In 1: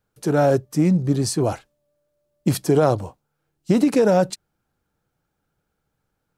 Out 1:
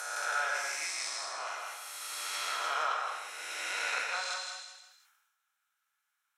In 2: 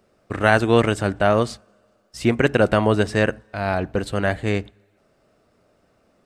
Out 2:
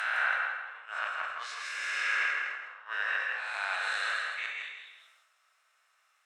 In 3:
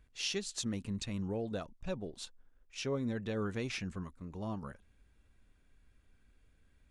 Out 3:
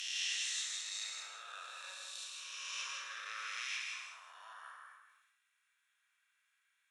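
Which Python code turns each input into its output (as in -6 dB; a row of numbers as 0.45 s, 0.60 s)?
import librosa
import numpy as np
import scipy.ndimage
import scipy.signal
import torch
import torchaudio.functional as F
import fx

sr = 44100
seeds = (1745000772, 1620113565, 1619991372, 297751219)

p1 = fx.spec_swells(x, sr, rise_s=2.45)
p2 = scipy.signal.sosfilt(scipy.signal.butter(4, 1200.0, 'highpass', fs=sr, output='sos'), p1)
p3 = fx.notch(p2, sr, hz=4700.0, q=6.6)
p4 = fx.env_lowpass_down(p3, sr, base_hz=1700.0, full_db=-20.0)
p5 = fx.gate_flip(p4, sr, shuts_db=-14.0, range_db=-27)
p6 = p5 + fx.echo_feedback(p5, sr, ms=161, feedback_pct=24, wet_db=-5.5, dry=0)
p7 = fx.rev_gated(p6, sr, seeds[0], gate_ms=250, shape='flat', drr_db=1.5)
p8 = fx.sustainer(p7, sr, db_per_s=47.0)
y = p8 * librosa.db_to_amplitude(-6.0)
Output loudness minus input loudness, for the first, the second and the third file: -14.5 LU, -11.5 LU, -1.5 LU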